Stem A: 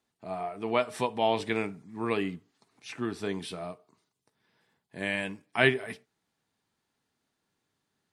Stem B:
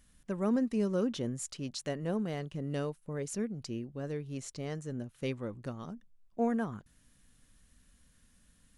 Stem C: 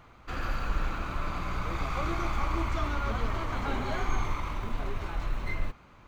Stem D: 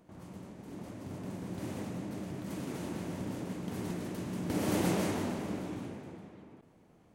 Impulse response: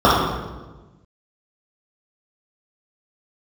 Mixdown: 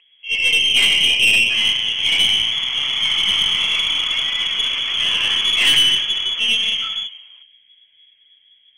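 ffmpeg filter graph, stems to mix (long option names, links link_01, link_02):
-filter_complex "[0:a]flanger=delay=7.9:depth=5.8:regen=-20:speed=0.46:shape=sinusoidal,volume=-6.5dB,asplit=2[link_01][link_02];[link_02]volume=-6dB[link_03];[1:a]volume=-15dB,asplit=2[link_04][link_05];[link_05]volume=-4dB[link_06];[2:a]dynaudnorm=framelen=220:gausssize=9:maxgain=9dB,equalizer=frequency=410:width_type=o:width=0.32:gain=12,adelay=1350,volume=-1dB[link_07];[3:a]volume=-14dB[link_08];[4:a]atrim=start_sample=2205[link_09];[link_03][link_06]amix=inputs=2:normalize=0[link_10];[link_10][link_09]afir=irnorm=-1:irlink=0[link_11];[link_01][link_04][link_07][link_08][link_11]amix=inputs=5:normalize=0,lowpass=frequency=2900:width_type=q:width=0.5098,lowpass=frequency=2900:width_type=q:width=0.6013,lowpass=frequency=2900:width_type=q:width=0.9,lowpass=frequency=2900:width_type=q:width=2.563,afreqshift=-3400,acompressor=mode=upward:threshold=-53dB:ratio=2.5,aeval=exprs='(tanh(2.82*val(0)+0.25)-tanh(0.25))/2.82':channel_layout=same"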